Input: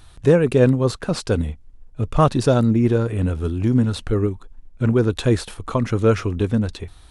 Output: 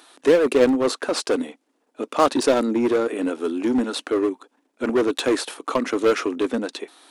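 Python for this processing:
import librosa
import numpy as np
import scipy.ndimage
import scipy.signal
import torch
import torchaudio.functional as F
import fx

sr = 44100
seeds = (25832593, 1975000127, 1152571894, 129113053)

p1 = scipy.signal.sosfilt(scipy.signal.ellip(4, 1.0, 70, 270.0, 'highpass', fs=sr, output='sos'), x)
p2 = 10.0 ** (-21.0 / 20.0) * (np.abs((p1 / 10.0 ** (-21.0 / 20.0) + 3.0) % 4.0 - 2.0) - 1.0)
y = p1 + F.gain(torch.from_numpy(p2), -3.5).numpy()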